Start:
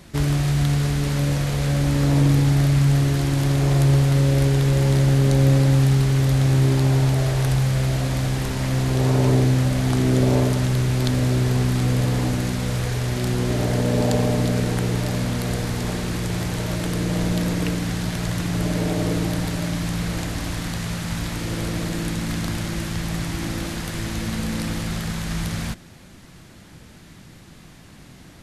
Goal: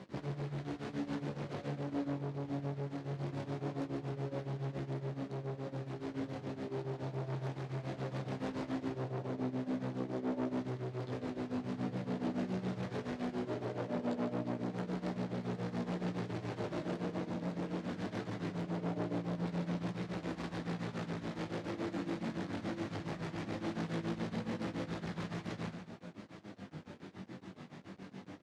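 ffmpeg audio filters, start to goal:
ffmpeg -i in.wav -af "tiltshelf=frequency=1300:gain=6,acompressor=threshold=-22dB:ratio=6,flanger=delay=9.4:depth=3.1:regen=-24:speed=1.1:shape=sinusoidal,tremolo=f=7.1:d=0.91,aeval=exprs='sgn(val(0))*max(abs(val(0))-0.00112,0)':channel_layout=same,flanger=delay=15.5:depth=5.9:speed=0.2,asoftclip=type=tanh:threshold=-36.5dB,highpass=200,lowpass=5000,aecho=1:1:145:0.335,volume=6.5dB" out.wav

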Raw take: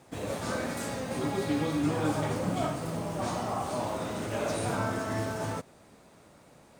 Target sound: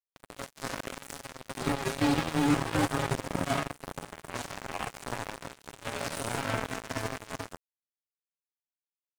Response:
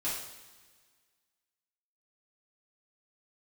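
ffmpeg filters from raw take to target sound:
-filter_complex "[0:a]bandreject=frequency=50:width_type=h:width=6,bandreject=frequency=100:width_type=h:width=6,bandreject=frequency=150:width_type=h:width=6,bandreject=frequency=200:width_type=h:width=6,aecho=1:1:7.3:0.67,acrossover=split=310|760|5400[link_01][link_02][link_03][link_04];[link_02]asoftclip=type=hard:threshold=-30.5dB[link_05];[link_01][link_05][link_03][link_04]amix=inputs=4:normalize=0,atempo=0.74,acrusher=bits=3:mix=0:aa=0.5"

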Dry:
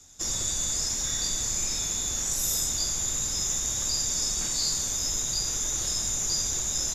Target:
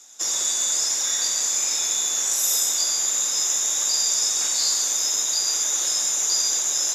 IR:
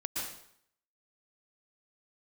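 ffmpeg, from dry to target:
-filter_complex "[0:a]highpass=540,bandreject=frequency=4500:width=25,asplit=2[link_01][link_02];[1:a]atrim=start_sample=2205,atrim=end_sample=6615[link_03];[link_02][link_03]afir=irnorm=-1:irlink=0,volume=-5dB[link_04];[link_01][link_04]amix=inputs=2:normalize=0,volume=2.5dB"

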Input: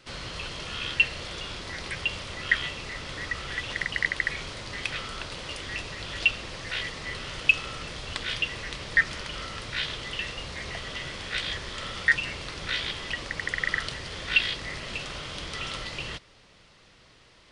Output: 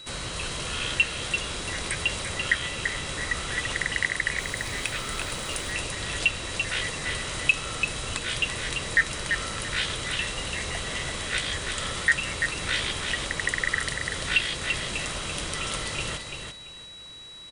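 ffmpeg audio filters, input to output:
ffmpeg -i in.wav -filter_complex "[0:a]highshelf=frequency=6400:width_type=q:width=1.5:gain=10,asplit=2[link_01][link_02];[link_02]alimiter=limit=-17dB:level=0:latency=1:release=378,volume=1dB[link_03];[link_01][link_03]amix=inputs=2:normalize=0,aecho=1:1:339|678|1017:0.501|0.11|0.0243,aeval=exprs='val(0)+0.0112*sin(2*PI*3900*n/s)':channel_layout=same,asettb=1/sr,asplit=3[link_04][link_05][link_06];[link_04]atrim=end=4.384[link_07];[link_05]atrim=start=4.38:end=5.72,asetpts=PTS-STARTPTS,afade=type=in:duration=0.004:curve=qsin,afade=type=out:start_time=1.336:duration=0.004:curve=qsin,acrusher=bits=6:mix=0:aa=0.5[link_08];[link_06]atrim=start=5.716[link_09];[link_07][link_08]acrossfade=duration=0.004:curve1=hsin:curve2=qsin[link_10];[link_10][link_09]acrossfade=duration=0.004:curve1=qsin:curve2=hsin,volume=-3dB" out.wav

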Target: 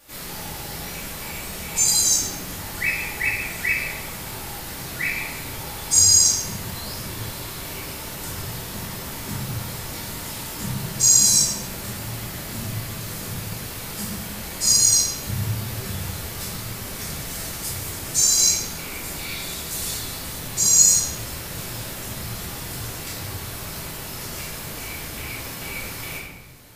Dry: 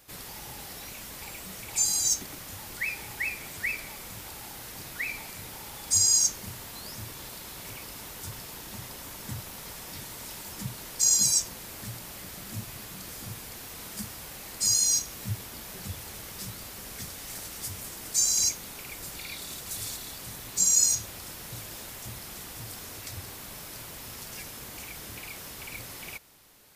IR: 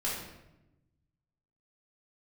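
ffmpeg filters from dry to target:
-filter_complex "[1:a]atrim=start_sample=2205,asetrate=37926,aresample=44100[link_01];[0:a][link_01]afir=irnorm=-1:irlink=0,volume=2.5dB"

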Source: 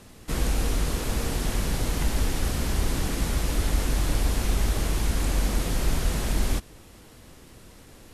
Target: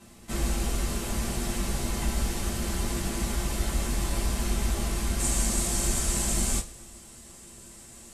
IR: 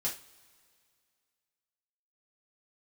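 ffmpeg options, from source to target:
-filter_complex "[0:a]asetnsamples=nb_out_samples=441:pad=0,asendcmd='5.19 equalizer g 14',equalizer=frequency=7900:width_type=o:width=1:gain=3[link_01];[1:a]atrim=start_sample=2205,asetrate=66150,aresample=44100[link_02];[link_01][link_02]afir=irnorm=-1:irlink=0,volume=-2dB"

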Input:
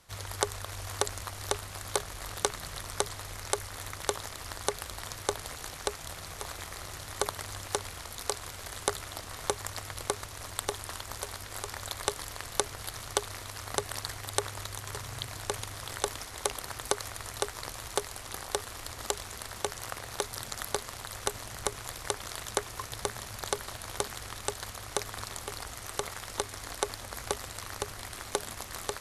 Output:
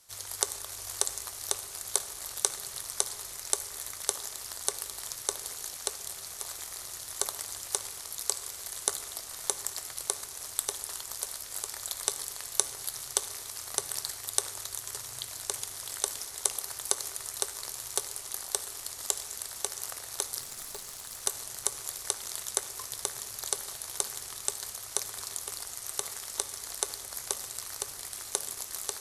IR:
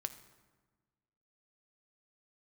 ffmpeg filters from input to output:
-filter_complex "[0:a]bass=frequency=250:gain=-7,treble=frequency=4000:gain=14,asettb=1/sr,asplit=3[link_01][link_02][link_03];[link_01]atrim=end=20.404[link_04];[link_02]atrim=start=20.4:end=21.24,asetpts=PTS-STARTPTS,afade=type=in:duration=0.004:curve=qsin,afade=type=out:start_time=0.836:duration=0.004:curve=qsin,aeval=exprs='(tanh(20*val(0)+0.25)-tanh(0.25))/20':channel_layout=same[link_05];[link_03]atrim=start=21.236[link_06];[link_04][link_05]acrossfade=duration=0.004:curve1=hsin:curve2=qsin[link_07];[link_07][link_06]acrossfade=duration=0.004:curve1=qsin:curve2=hsin[link_08];[1:a]atrim=start_sample=2205[link_09];[link_08][link_09]afir=irnorm=-1:irlink=0,volume=-5.5dB"

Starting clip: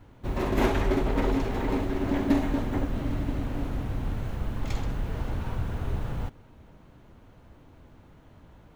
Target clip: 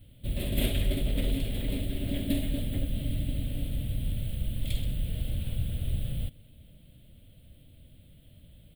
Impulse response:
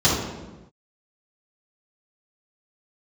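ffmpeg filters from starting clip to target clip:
-af "firequalizer=gain_entry='entry(150,0);entry(400,-14);entry(580,-4);entry(870,-28);entry(2000,-8);entry(3300,8);entry(6000,-17);entry(8600,12)':delay=0.05:min_phase=1"

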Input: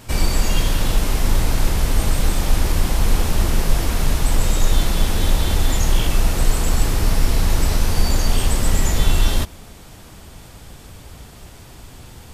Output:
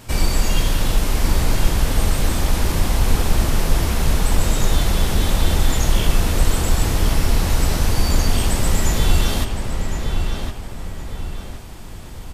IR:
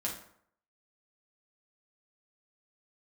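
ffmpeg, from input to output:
-filter_complex "[0:a]asplit=2[link_01][link_02];[link_02]adelay=1063,lowpass=frequency=3400:poles=1,volume=-5dB,asplit=2[link_03][link_04];[link_04]adelay=1063,lowpass=frequency=3400:poles=1,volume=0.42,asplit=2[link_05][link_06];[link_06]adelay=1063,lowpass=frequency=3400:poles=1,volume=0.42,asplit=2[link_07][link_08];[link_08]adelay=1063,lowpass=frequency=3400:poles=1,volume=0.42,asplit=2[link_09][link_10];[link_10]adelay=1063,lowpass=frequency=3400:poles=1,volume=0.42[link_11];[link_01][link_03][link_05][link_07][link_09][link_11]amix=inputs=6:normalize=0"

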